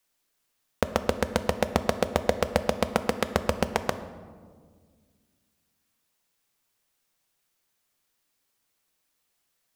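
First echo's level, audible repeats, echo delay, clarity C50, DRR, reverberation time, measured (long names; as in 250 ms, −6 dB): no echo audible, no echo audible, no echo audible, 12.5 dB, 10.0 dB, 1.8 s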